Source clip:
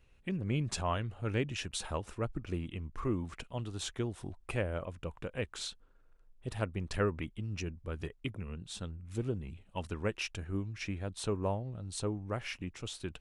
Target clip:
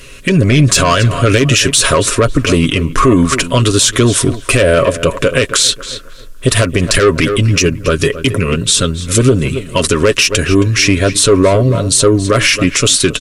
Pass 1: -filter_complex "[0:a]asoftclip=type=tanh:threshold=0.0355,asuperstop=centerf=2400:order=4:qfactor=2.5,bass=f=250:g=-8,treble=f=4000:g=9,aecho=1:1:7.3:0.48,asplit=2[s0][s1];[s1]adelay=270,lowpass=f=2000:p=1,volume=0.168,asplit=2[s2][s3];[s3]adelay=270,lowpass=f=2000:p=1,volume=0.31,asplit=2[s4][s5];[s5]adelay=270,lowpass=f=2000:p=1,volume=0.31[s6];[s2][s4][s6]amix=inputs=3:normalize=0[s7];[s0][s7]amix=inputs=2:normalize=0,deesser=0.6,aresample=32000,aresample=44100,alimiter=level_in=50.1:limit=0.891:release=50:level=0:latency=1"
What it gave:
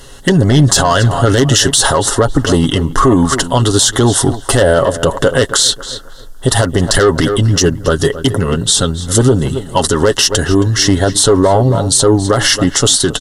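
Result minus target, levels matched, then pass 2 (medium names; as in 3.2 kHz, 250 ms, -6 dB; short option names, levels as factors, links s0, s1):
2 kHz band -3.5 dB
-filter_complex "[0:a]asoftclip=type=tanh:threshold=0.0355,asuperstop=centerf=810:order=4:qfactor=2.5,bass=f=250:g=-8,treble=f=4000:g=9,aecho=1:1:7.3:0.48,asplit=2[s0][s1];[s1]adelay=270,lowpass=f=2000:p=1,volume=0.168,asplit=2[s2][s3];[s3]adelay=270,lowpass=f=2000:p=1,volume=0.31,asplit=2[s4][s5];[s5]adelay=270,lowpass=f=2000:p=1,volume=0.31[s6];[s2][s4][s6]amix=inputs=3:normalize=0[s7];[s0][s7]amix=inputs=2:normalize=0,deesser=0.6,aresample=32000,aresample=44100,alimiter=level_in=50.1:limit=0.891:release=50:level=0:latency=1"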